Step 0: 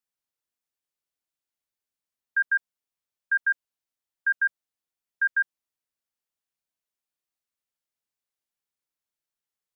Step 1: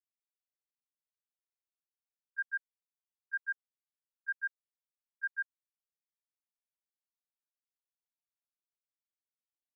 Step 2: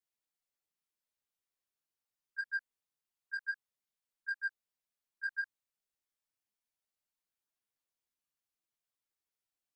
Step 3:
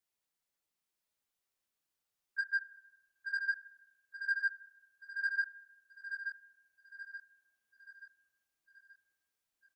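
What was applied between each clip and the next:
gate -21 dBFS, range -22 dB; dynamic bell 1.6 kHz, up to +5 dB, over -39 dBFS, Q 2.4; compression, threshold -23 dBFS, peak gain reduction 4 dB; trim -8.5 dB
saturation -30 dBFS, distortion -20 dB; chorus voices 4, 0.48 Hz, delay 14 ms, depth 4.7 ms; peak limiter -34 dBFS, peak gain reduction 5 dB; trim +5.5 dB
feedback delay 879 ms, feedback 45%, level -7 dB; reverberation RT60 1.0 s, pre-delay 36 ms, DRR 16 dB; trim +3 dB

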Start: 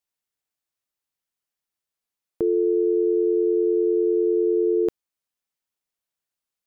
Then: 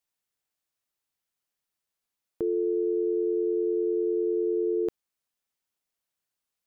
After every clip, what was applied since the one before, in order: peak limiter -21.5 dBFS, peak gain reduction 7 dB; trim +1 dB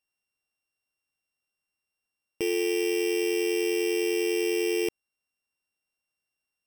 sorted samples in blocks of 16 samples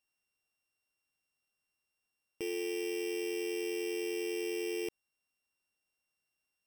peak limiter -30.5 dBFS, peak gain reduction 10 dB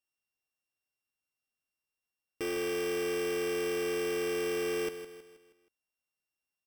waveshaping leveller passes 3; feedback delay 159 ms, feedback 46%, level -11 dB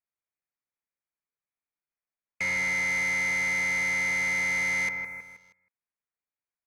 frequency inversion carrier 2.5 kHz; waveshaping leveller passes 2; trim +2 dB

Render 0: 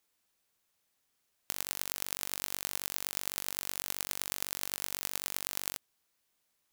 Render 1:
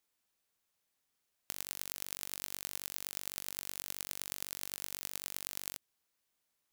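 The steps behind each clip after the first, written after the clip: dynamic bell 950 Hz, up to -4 dB, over -55 dBFS, Q 0.73; trim -4.5 dB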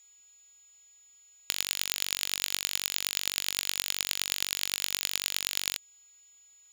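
whistle 6.9 kHz -67 dBFS; peaking EQ 3.3 kHz +14 dB 2 oct; trim +4 dB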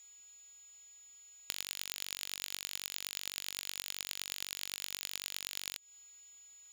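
compression 12:1, threshold -34 dBFS, peak gain reduction 12.5 dB; trim +1.5 dB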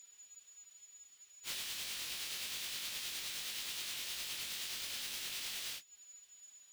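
phase randomisation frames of 100 ms

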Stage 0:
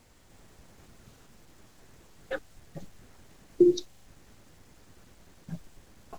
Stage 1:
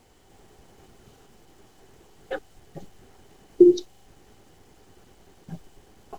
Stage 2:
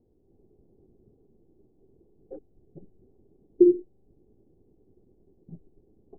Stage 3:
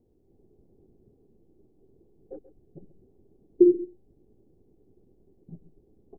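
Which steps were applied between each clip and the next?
small resonant body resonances 400/770/3000 Hz, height 9 dB, ringing for 25 ms
four-pole ladder low-pass 470 Hz, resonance 35%
delay 134 ms -15 dB

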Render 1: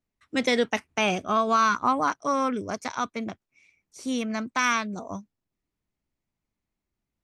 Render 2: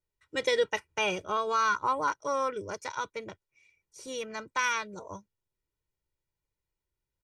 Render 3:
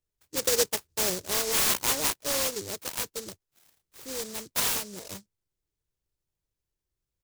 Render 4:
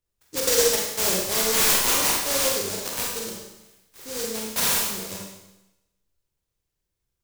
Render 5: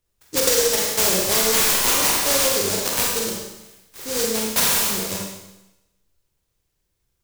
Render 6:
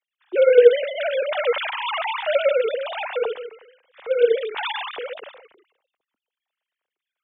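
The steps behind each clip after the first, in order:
comb 2.1 ms, depth 85%; trim -6.5 dB
delay time shaken by noise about 5.9 kHz, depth 0.27 ms; trim +1.5 dB
Schroeder reverb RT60 0.95 s, combs from 32 ms, DRR -2 dB; trim +1.5 dB
compression 10:1, threshold -22 dBFS, peak gain reduction 8 dB; trim +7.5 dB
formants replaced by sine waves

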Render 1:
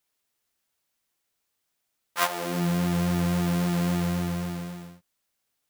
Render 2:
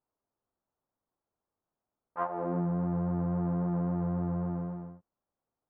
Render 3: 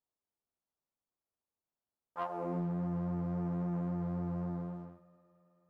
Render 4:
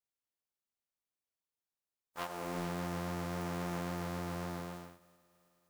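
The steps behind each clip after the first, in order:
low-pass 1.1 kHz 24 dB/octave; compression, threshold -27 dBFS, peak gain reduction 6 dB
waveshaping leveller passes 1; multi-head delay 108 ms, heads first and third, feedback 72%, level -23 dB; trim -7.5 dB
spectral contrast reduction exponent 0.5; trim -3 dB

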